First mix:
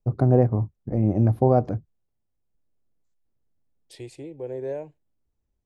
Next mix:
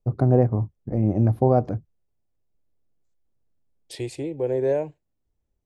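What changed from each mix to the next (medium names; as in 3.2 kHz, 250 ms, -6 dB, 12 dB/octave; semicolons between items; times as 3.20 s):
second voice +8.5 dB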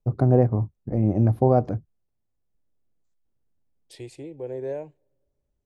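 second voice -9.0 dB; reverb: on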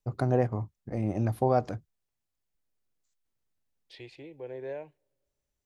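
second voice: add distance through air 310 m; master: add tilt shelf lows -9.5 dB, about 1.1 kHz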